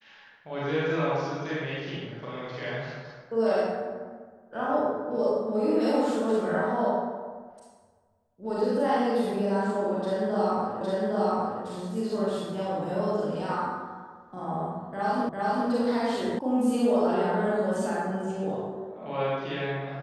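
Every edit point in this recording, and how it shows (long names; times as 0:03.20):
0:10.81: the same again, the last 0.81 s
0:15.29: the same again, the last 0.4 s
0:16.39: cut off before it has died away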